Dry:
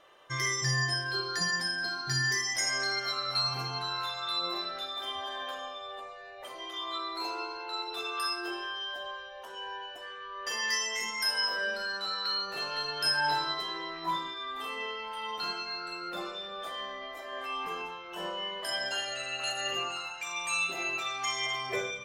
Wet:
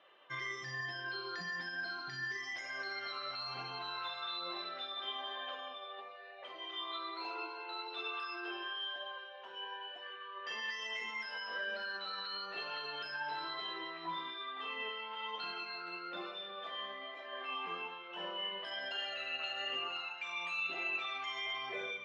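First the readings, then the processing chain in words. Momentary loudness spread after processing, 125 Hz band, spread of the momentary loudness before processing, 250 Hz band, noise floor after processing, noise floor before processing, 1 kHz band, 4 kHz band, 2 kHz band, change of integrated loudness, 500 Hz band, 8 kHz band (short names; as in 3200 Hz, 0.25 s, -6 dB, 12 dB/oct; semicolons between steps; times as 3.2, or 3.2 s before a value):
7 LU, -18.0 dB, 12 LU, -8.5 dB, -50 dBFS, -44 dBFS, -7.0 dB, -8.0 dB, -6.5 dB, -8.0 dB, -7.5 dB, -25.0 dB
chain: HPF 160 Hz 24 dB/oct; limiter -26 dBFS, peak gain reduction 8 dB; ladder low-pass 3900 Hz, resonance 35%; flange 1.1 Hz, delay 1 ms, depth 5 ms, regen +75%; gain +5.5 dB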